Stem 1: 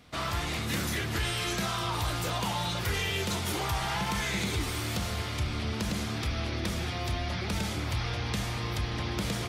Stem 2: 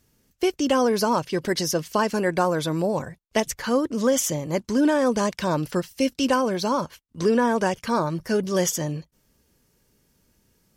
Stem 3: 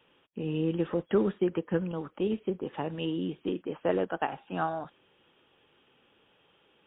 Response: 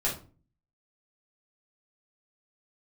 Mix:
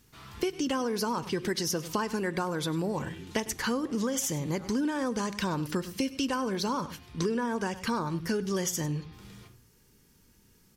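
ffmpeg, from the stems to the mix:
-filter_complex "[0:a]volume=-18.5dB,asplit=2[a][b];[b]volume=-10.5dB[c];[1:a]volume=2dB,asplit=4[d][e][f][g];[e]volume=-24dB[h];[f]volume=-18dB[i];[2:a]volume=-15.5dB[j];[g]apad=whole_len=418338[k];[a][k]sidechaincompress=threshold=-28dB:ratio=8:attack=16:release=1360[l];[3:a]atrim=start_sample=2205[m];[c][h]amix=inputs=2:normalize=0[n];[n][m]afir=irnorm=-1:irlink=0[o];[i]aecho=0:1:100:1[p];[l][d][j][o][p]amix=inputs=5:normalize=0,equalizer=f=610:w=3.2:g=-10,acompressor=threshold=-27dB:ratio=6"

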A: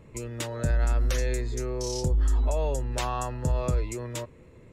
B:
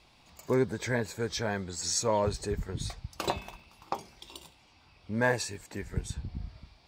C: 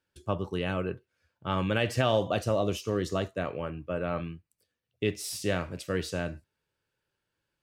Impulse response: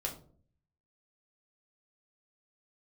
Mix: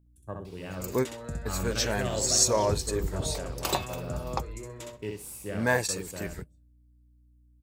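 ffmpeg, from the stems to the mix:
-filter_complex "[0:a]acompressor=threshold=-24dB:ratio=6,adelay=650,volume=-8dB,asplit=2[a][b];[b]volume=-3.5dB[c];[1:a]aemphasis=mode=production:type=50kf,adelay=450,volume=1dB[d];[2:a]afwtdn=0.0141,aeval=exprs='val(0)+0.00251*(sin(2*PI*60*n/s)+sin(2*PI*2*60*n/s)/2+sin(2*PI*3*60*n/s)/3+sin(2*PI*4*60*n/s)/4+sin(2*PI*5*60*n/s)/5)':c=same,aexciter=amount=11.5:drive=5:freq=6.8k,volume=-10dB,asplit=4[e][f][g][h];[f]volume=-14.5dB[i];[g]volume=-3dB[j];[h]apad=whole_len=323151[k];[d][k]sidechaingate=range=-48dB:threshold=-53dB:ratio=16:detection=peak[l];[3:a]atrim=start_sample=2205[m];[i][m]afir=irnorm=-1:irlink=0[n];[c][j]amix=inputs=2:normalize=0,aecho=0:1:64|128|192:1|0.19|0.0361[o];[a][l][e][n][o]amix=inputs=5:normalize=0"

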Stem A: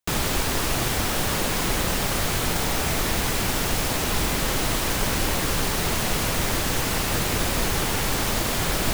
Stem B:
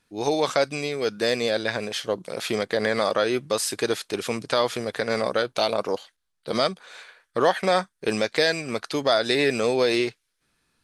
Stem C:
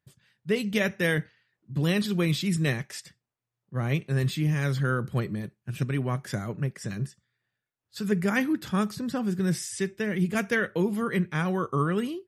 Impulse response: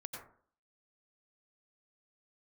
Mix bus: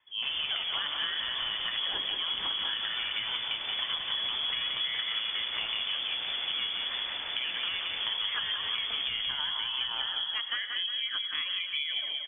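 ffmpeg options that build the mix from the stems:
-filter_complex "[0:a]adelay=150,volume=-12.5dB,asplit=2[a][b];[b]volume=-6dB[c];[1:a]asubboost=boost=6.5:cutoff=120,acompressor=threshold=-27dB:ratio=6,volume=-3dB,asplit=3[d][e][f];[e]volume=-6.5dB[g];[f]volume=-3.5dB[h];[2:a]bandreject=f=60:t=h:w=6,bandreject=f=120:t=h:w=6,bandreject=f=180:t=h:w=6,volume=-5.5dB,asplit=3[i][j][k];[j]volume=-8dB[l];[k]volume=-6dB[m];[3:a]atrim=start_sample=2205[n];[g][l]amix=inputs=2:normalize=0[o];[o][n]afir=irnorm=-1:irlink=0[p];[c][h][m]amix=inputs=3:normalize=0,aecho=0:1:177|354|531|708|885|1062|1239:1|0.49|0.24|0.118|0.0576|0.0282|0.0138[q];[a][d][i][p][q]amix=inputs=5:normalize=0,lowpass=f=3k:t=q:w=0.5098,lowpass=f=3k:t=q:w=0.6013,lowpass=f=3k:t=q:w=0.9,lowpass=f=3k:t=q:w=2.563,afreqshift=-3500,acompressor=threshold=-29dB:ratio=6"

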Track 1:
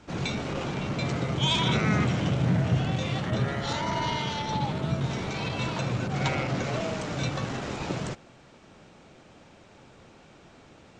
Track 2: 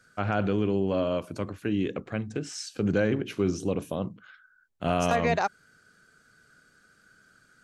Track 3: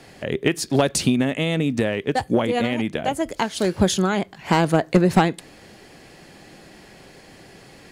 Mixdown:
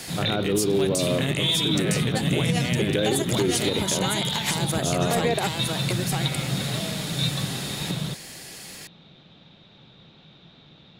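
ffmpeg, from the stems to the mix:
-filter_complex "[0:a]lowpass=f=3.7k:t=q:w=12,equalizer=f=160:w=1.7:g=12.5,volume=4dB,asoftclip=hard,volume=-4dB,volume=-5dB[a];[1:a]equalizer=f=380:t=o:w=0.88:g=9.5,volume=1dB[b];[2:a]acompressor=threshold=-24dB:ratio=6,crystalizer=i=7:c=0,alimiter=limit=-9.5dB:level=0:latency=1:release=363,volume=0.5dB,asplit=2[c][d];[d]volume=-3.5dB,aecho=0:1:960:1[e];[a][b][c][e]amix=inputs=4:normalize=0,alimiter=limit=-13dB:level=0:latency=1:release=141"

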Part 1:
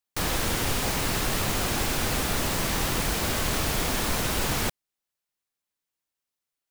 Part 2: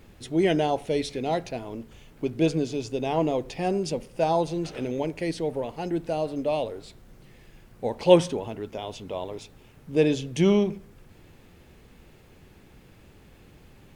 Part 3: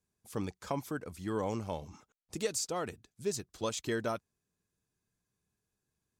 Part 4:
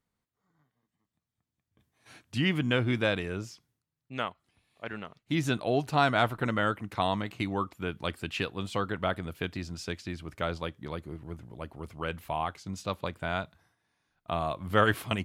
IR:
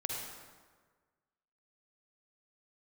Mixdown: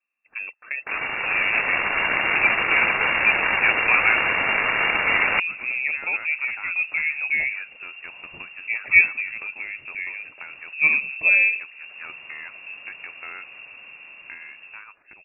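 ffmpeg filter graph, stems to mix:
-filter_complex "[0:a]lowshelf=f=400:t=q:w=3:g=-6,acrusher=bits=3:mix=0:aa=0.5,adelay=700,volume=-1dB[a];[1:a]acompressor=mode=upward:threshold=-36dB:ratio=2.5,adelay=850,volume=-8.5dB[b];[2:a]volume=2.5dB,asplit=2[c][d];[3:a]highpass=98,acompressor=threshold=-35dB:ratio=4,aeval=exprs='clip(val(0),-1,0.0141)':c=same,volume=-10dB[e];[d]apad=whole_len=652973[f];[b][f]sidechaincompress=threshold=-53dB:ratio=8:attack=16:release=834[g];[a][g][c][e]amix=inputs=4:normalize=0,lowpass=f=2.4k:t=q:w=0.5098,lowpass=f=2.4k:t=q:w=0.6013,lowpass=f=2.4k:t=q:w=0.9,lowpass=f=2.4k:t=q:w=2.563,afreqshift=-2800,dynaudnorm=f=590:g=5:m=11.5dB"

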